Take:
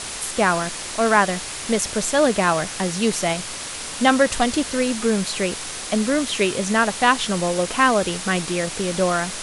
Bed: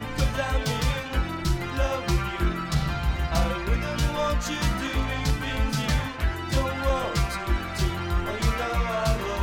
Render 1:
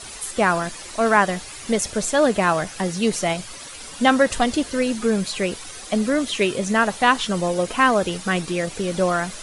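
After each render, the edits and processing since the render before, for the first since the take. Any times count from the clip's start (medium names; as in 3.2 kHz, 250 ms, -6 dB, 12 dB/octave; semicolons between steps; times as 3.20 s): noise reduction 11 dB, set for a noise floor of -32 dBFS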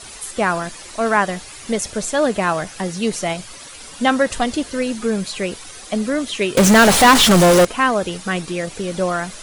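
6.57–7.65 s: power-law waveshaper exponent 0.35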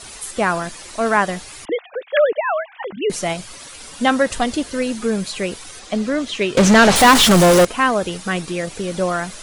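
1.65–3.10 s: formants replaced by sine waves; 5.79–6.96 s: low-pass 6.8 kHz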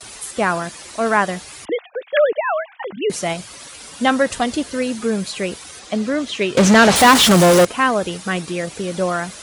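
gate with hold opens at -31 dBFS; high-pass 59 Hz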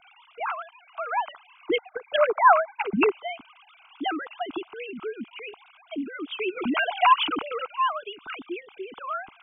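formants replaced by sine waves; static phaser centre 2.7 kHz, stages 8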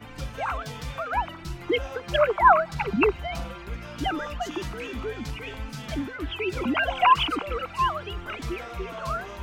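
add bed -10.5 dB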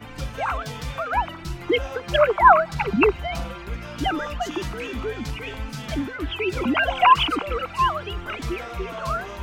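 trim +3.5 dB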